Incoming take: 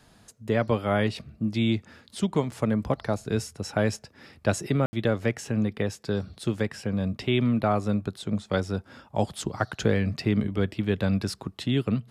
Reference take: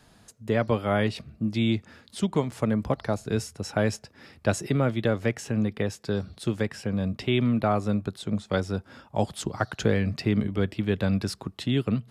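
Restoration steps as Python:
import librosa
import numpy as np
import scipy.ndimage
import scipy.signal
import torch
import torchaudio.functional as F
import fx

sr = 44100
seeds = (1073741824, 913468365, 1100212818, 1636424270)

y = fx.fix_ambience(x, sr, seeds[0], print_start_s=0.0, print_end_s=0.5, start_s=4.86, end_s=4.93)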